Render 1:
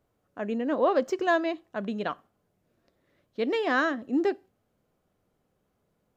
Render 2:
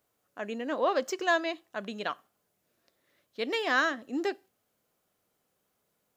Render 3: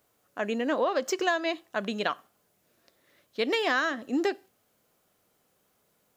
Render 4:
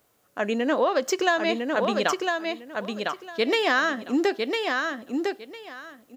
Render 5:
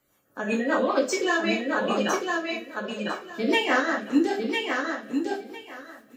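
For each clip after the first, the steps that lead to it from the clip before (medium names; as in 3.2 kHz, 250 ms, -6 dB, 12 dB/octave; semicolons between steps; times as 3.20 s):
tilt EQ +3 dB/octave; trim -1.5 dB
compression 10:1, threshold -29 dBFS, peak gain reduction 9 dB; trim +6.5 dB
feedback delay 1004 ms, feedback 19%, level -4 dB; trim +4 dB
coarse spectral quantiser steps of 30 dB; two-slope reverb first 0.4 s, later 1.6 s, from -19 dB, DRR -3.5 dB; rotary cabinet horn 5 Hz; trim -3 dB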